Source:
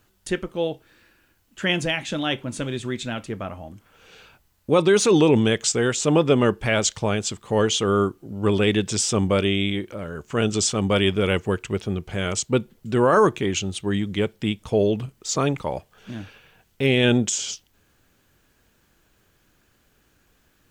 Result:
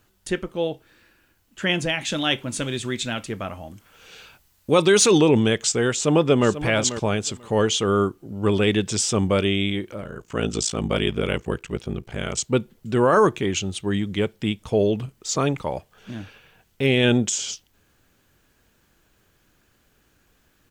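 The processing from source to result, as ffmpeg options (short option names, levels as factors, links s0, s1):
-filter_complex "[0:a]asettb=1/sr,asplit=3[s0][s1][s2];[s0]atrim=end=2.014[s3];[s1]atrim=start=2.01:end=5.18,asetpts=PTS-STARTPTS,afade=t=in:d=0.004:c=qsin,afade=t=out:st=3.166:d=0.004:c=qsin,highshelf=f=2100:g=7[s4];[s2]atrim=start=5.176[s5];[s3][s4]acrossfade=d=0.004:c1=hsin:c2=qsin[s6];[s6][s5]acrossfade=d=0.004:c1=qsin:c2=hsin,asplit=2[s7][s8];[s8]afade=t=in:st=5.92:d=0.01,afade=t=out:st=6.5:d=0.01,aecho=0:1:490|980:0.251189|0.0376783[s9];[s7][s9]amix=inputs=2:normalize=0,asettb=1/sr,asplit=3[s10][s11][s12];[s10]atrim=end=10.014[s13];[s11]atrim=start=10.01:end=12.38,asetpts=PTS-STARTPTS,afade=t=in:d=0.004:c=qsin,afade=t=out:st=2.366:d=0.004:c=qsin,aeval=exprs='val(0)*sin(2*PI*28*n/s)':c=same[s14];[s12]atrim=start=12.376[s15];[s13][s14]acrossfade=d=0.004:c1=hsin:c2=qsin[s16];[s16][s15]acrossfade=d=0.004:c1=qsin:c2=hsin"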